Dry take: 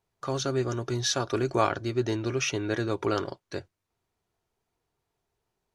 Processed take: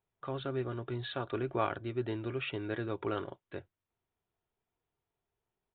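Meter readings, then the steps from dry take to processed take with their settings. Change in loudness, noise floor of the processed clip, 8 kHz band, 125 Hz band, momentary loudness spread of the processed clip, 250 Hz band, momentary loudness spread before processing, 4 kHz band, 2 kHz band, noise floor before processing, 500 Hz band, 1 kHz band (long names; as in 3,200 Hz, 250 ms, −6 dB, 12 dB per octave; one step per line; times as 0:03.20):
−8.0 dB, below −85 dBFS, below −40 dB, −7.5 dB, 9 LU, −7.5 dB, 9 LU, −12.0 dB, −7.5 dB, −83 dBFS, −7.5 dB, −7.5 dB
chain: downsampling to 8,000 Hz
level −7.5 dB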